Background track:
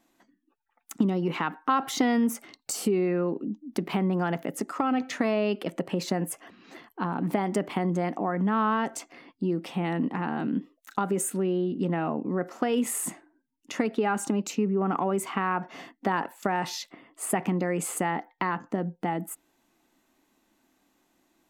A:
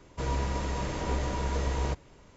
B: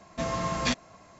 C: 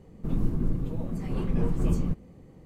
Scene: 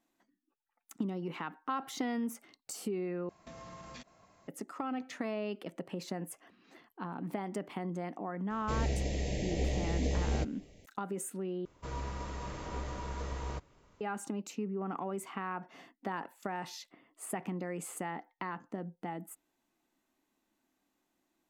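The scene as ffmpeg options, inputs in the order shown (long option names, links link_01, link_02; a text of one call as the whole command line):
ffmpeg -i bed.wav -i cue0.wav -i cue1.wav -filter_complex "[1:a]asplit=2[link_01][link_02];[0:a]volume=-11dB[link_03];[2:a]acompressor=threshold=-35dB:ratio=6:attack=3.2:release=140:knee=1:detection=peak[link_04];[link_01]asuperstop=centerf=1200:order=8:qfactor=1.1[link_05];[link_02]equalizer=frequency=1200:width_type=o:width=0.47:gain=5.5[link_06];[link_03]asplit=3[link_07][link_08][link_09];[link_07]atrim=end=3.294[link_10];[link_04]atrim=end=1.19,asetpts=PTS-STARTPTS,volume=-10.5dB[link_11];[link_08]atrim=start=4.476:end=11.654[link_12];[link_06]atrim=end=2.36,asetpts=PTS-STARTPTS,volume=-9.5dB[link_13];[link_09]atrim=start=14.006[link_14];[link_05]atrim=end=2.36,asetpts=PTS-STARTPTS,volume=-2dB,afade=type=in:duration=0.004:curve=hsin,afade=type=out:start_time=2.356:duration=0.004:curve=hsin,adelay=374850S[link_15];[link_10][link_11]acrossfade=duration=0.004:curve1=hsin:curve2=hsin[link_16];[link_16][link_12]acrossfade=duration=0.004:curve1=hsin:curve2=hsin[link_17];[link_17][link_13]acrossfade=duration=0.004:curve1=hsin:curve2=hsin[link_18];[link_18][link_14]acrossfade=duration=0.004:curve1=hsin:curve2=hsin[link_19];[link_19][link_15]amix=inputs=2:normalize=0" out.wav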